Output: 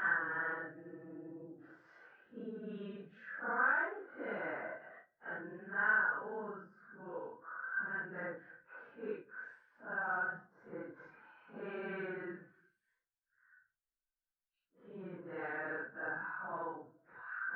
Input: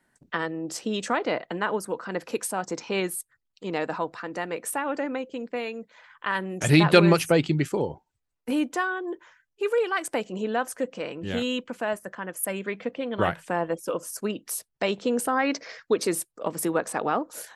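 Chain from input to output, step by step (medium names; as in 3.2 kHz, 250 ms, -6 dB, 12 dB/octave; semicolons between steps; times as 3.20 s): four-pole ladder low-pass 1.6 kHz, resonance 85%; Paulstretch 4.5×, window 0.05 s, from 0.33 s; trim -5 dB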